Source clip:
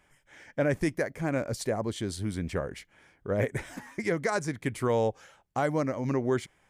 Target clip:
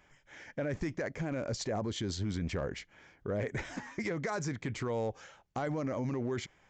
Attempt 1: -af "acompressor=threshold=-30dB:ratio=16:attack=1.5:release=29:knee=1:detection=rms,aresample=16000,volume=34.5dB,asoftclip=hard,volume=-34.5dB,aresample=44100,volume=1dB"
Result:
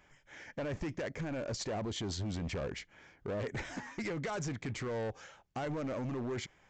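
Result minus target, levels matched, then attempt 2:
overloaded stage: distortion +19 dB
-af "acompressor=threshold=-30dB:ratio=16:attack=1.5:release=29:knee=1:detection=rms,aresample=16000,volume=28dB,asoftclip=hard,volume=-28dB,aresample=44100,volume=1dB"

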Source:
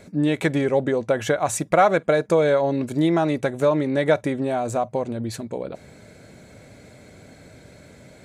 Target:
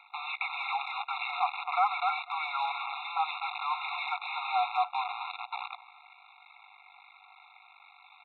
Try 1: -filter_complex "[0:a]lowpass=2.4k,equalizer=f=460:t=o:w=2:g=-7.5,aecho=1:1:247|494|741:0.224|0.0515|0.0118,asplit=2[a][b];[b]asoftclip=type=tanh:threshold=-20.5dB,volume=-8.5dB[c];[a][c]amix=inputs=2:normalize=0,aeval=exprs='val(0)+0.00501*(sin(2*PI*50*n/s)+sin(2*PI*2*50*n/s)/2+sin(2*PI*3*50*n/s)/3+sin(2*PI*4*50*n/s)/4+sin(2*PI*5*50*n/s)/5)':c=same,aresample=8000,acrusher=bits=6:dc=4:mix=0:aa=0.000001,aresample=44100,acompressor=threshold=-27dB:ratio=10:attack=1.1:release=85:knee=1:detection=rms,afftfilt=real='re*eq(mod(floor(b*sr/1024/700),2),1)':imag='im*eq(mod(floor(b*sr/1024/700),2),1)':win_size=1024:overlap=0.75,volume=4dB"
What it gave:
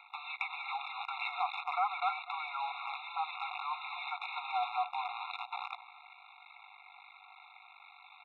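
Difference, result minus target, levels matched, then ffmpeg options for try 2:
compressor: peak gain reduction +6.5 dB; soft clip: distortion -8 dB
-filter_complex "[0:a]lowpass=2.4k,equalizer=f=460:t=o:w=2:g=-7.5,aecho=1:1:247|494|741:0.224|0.0515|0.0118,asplit=2[a][b];[b]asoftclip=type=tanh:threshold=-31dB,volume=-8.5dB[c];[a][c]amix=inputs=2:normalize=0,aeval=exprs='val(0)+0.00501*(sin(2*PI*50*n/s)+sin(2*PI*2*50*n/s)/2+sin(2*PI*3*50*n/s)/3+sin(2*PI*4*50*n/s)/4+sin(2*PI*5*50*n/s)/5)':c=same,aresample=8000,acrusher=bits=6:dc=4:mix=0:aa=0.000001,aresample=44100,acompressor=threshold=-20.5dB:ratio=10:attack=1.1:release=85:knee=1:detection=rms,afftfilt=real='re*eq(mod(floor(b*sr/1024/700),2),1)':imag='im*eq(mod(floor(b*sr/1024/700),2),1)':win_size=1024:overlap=0.75,volume=4dB"

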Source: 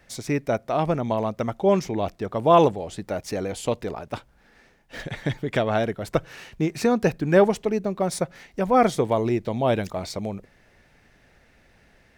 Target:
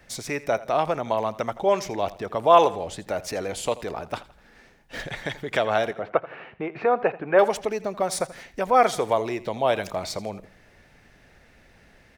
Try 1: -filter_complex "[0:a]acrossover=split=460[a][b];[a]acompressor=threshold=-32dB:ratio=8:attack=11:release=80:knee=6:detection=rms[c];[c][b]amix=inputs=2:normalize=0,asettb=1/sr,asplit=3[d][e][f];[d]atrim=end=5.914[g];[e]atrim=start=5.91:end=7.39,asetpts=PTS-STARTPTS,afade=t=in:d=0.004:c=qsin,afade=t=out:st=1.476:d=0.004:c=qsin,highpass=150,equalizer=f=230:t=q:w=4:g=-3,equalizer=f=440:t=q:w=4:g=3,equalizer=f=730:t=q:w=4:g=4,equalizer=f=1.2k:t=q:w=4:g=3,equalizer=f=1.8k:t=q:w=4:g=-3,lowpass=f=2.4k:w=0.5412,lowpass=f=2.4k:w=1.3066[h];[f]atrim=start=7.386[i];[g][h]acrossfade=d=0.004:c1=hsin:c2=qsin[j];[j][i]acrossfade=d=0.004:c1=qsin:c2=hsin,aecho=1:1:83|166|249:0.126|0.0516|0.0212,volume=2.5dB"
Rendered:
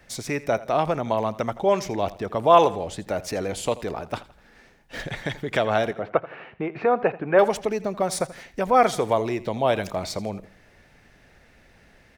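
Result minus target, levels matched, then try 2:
compressor: peak gain reduction -5.5 dB
-filter_complex "[0:a]acrossover=split=460[a][b];[a]acompressor=threshold=-38.5dB:ratio=8:attack=11:release=80:knee=6:detection=rms[c];[c][b]amix=inputs=2:normalize=0,asettb=1/sr,asplit=3[d][e][f];[d]atrim=end=5.914[g];[e]atrim=start=5.91:end=7.39,asetpts=PTS-STARTPTS,afade=t=in:d=0.004:c=qsin,afade=t=out:st=1.476:d=0.004:c=qsin,highpass=150,equalizer=f=230:t=q:w=4:g=-3,equalizer=f=440:t=q:w=4:g=3,equalizer=f=730:t=q:w=4:g=4,equalizer=f=1.2k:t=q:w=4:g=3,equalizer=f=1.8k:t=q:w=4:g=-3,lowpass=f=2.4k:w=0.5412,lowpass=f=2.4k:w=1.3066[h];[f]atrim=start=7.386[i];[g][h]acrossfade=d=0.004:c1=hsin:c2=qsin[j];[j][i]acrossfade=d=0.004:c1=qsin:c2=hsin,aecho=1:1:83|166|249:0.126|0.0516|0.0212,volume=2.5dB"

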